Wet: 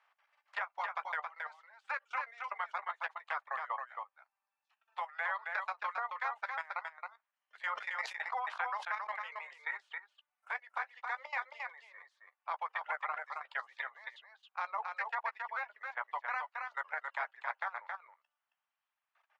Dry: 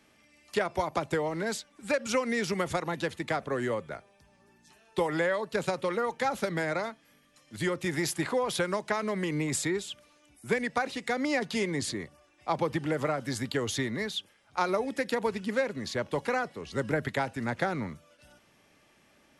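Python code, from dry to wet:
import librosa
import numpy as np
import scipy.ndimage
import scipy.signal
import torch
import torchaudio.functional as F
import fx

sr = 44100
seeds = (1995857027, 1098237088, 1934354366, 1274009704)

y = fx.spec_clip(x, sr, under_db=15)
y = scipy.signal.sosfilt(scipy.signal.butter(2, 1400.0, 'lowpass', fs=sr, output='sos'), y)
y = fx.dereverb_blind(y, sr, rt60_s=1.8)
y = scipy.signal.sosfilt(scipy.signal.cheby2(4, 50, 320.0, 'highpass', fs=sr, output='sos'), y)
y = fx.transient(y, sr, attack_db=1, sustain_db=-6)
y = fx.level_steps(y, sr, step_db=19)
y = fx.chorus_voices(y, sr, voices=4, hz=0.52, base_ms=12, depth_ms=3.4, mix_pct=25)
y = y + 10.0 ** (-4.5 / 20.0) * np.pad(y, (int(271 * sr / 1000.0), 0))[:len(y)]
y = fx.sustainer(y, sr, db_per_s=100.0, at=(7.57, 9.76), fade=0.02)
y = y * librosa.db_to_amplitude(4.5)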